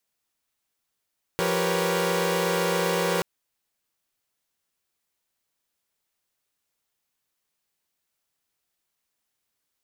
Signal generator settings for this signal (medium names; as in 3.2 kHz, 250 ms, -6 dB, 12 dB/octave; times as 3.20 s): chord F3/G4/A#4/B4/C#5 saw, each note -26.5 dBFS 1.83 s